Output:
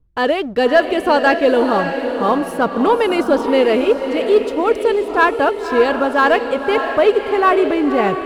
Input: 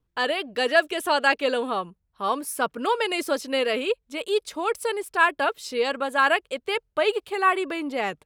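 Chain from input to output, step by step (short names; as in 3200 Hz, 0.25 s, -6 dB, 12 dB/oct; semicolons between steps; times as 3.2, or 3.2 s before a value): tilt -3.5 dB/oct; sample leveller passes 1; diffused feedback echo 0.572 s, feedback 44%, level -7 dB; gain +3.5 dB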